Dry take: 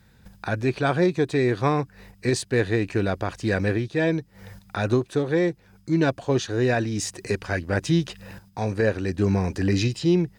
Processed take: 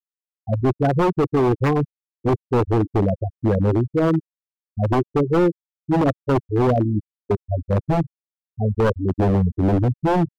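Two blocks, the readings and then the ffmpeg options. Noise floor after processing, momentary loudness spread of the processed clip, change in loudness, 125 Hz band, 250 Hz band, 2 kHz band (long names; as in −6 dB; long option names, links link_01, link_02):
below −85 dBFS, 8 LU, +3.5 dB, +4.5 dB, +3.5 dB, −5.5 dB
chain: -af "lowpass=frequency=1100:poles=1,acrusher=samples=10:mix=1:aa=0.000001,bandreject=frequency=152.9:width_type=h:width=4,bandreject=frequency=305.8:width_type=h:width=4,bandreject=frequency=458.7:width_type=h:width=4,bandreject=frequency=611.6:width_type=h:width=4,bandreject=frequency=764.5:width_type=h:width=4,bandreject=frequency=917.4:width_type=h:width=4,bandreject=frequency=1070.3:width_type=h:width=4,bandreject=frequency=1223.2:width_type=h:width=4,bandreject=frequency=1376.1:width_type=h:width=4,bandreject=frequency=1529:width_type=h:width=4,bandreject=frequency=1681.9:width_type=h:width=4,bandreject=frequency=1834.8:width_type=h:width=4,bandreject=frequency=1987.7:width_type=h:width=4,bandreject=frequency=2140.6:width_type=h:width=4,bandreject=frequency=2293.5:width_type=h:width=4,bandreject=frequency=2446.4:width_type=h:width=4,bandreject=frequency=2599.3:width_type=h:width=4,bandreject=frequency=2752.2:width_type=h:width=4,bandreject=frequency=2905.1:width_type=h:width=4,bandreject=frequency=3058:width_type=h:width=4,bandreject=frequency=3210.9:width_type=h:width=4,bandreject=frequency=3363.8:width_type=h:width=4,bandreject=frequency=3516.7:width_type=h:width=4,bandreject=frequency=3669.6:width_type=h:width=4,bandreject=frequency=3822.5:width_type=h:width=4,bandreject=frequency=3975.4:width_type=h:width=4,bandreject=frequency=4128.3:width_type=h:width=4,bandreject=frequency=4281.2:width_type=h:width=4,bandreject=frequency=4434.1:width_type=h:width=4,bandreject=frequency=4587:width_type=h:width=4,bandreject=frequency=4739.9:width_type=h:width=4,bandreject=frequency=4892.8:width_type=h:width=4,bandreject=frequency=5045.7:width_type=h:width=4,bandreject=frequency=5198.6:width_type=h:width=4,bandreject=frequency=5351.5:width_type=h:width=4,bandreject=frequency=5504.4:width_type=h:width=4,bandreject=frequency=5657.3:width_type=h:width=4,bandreject=frequency=5810.2:width_type=h:width=4,afftfilt=real='re*gte(hypot(re,im),0.224)':imag='im*gte(hypot(re,im),0.224)':win_size=1024:overlap=0.75,aeval=exprs='0.106*(abs(mod(val(0)/0.106+3,4)-2)-1)':channel_layout=same,volume=7.5dB"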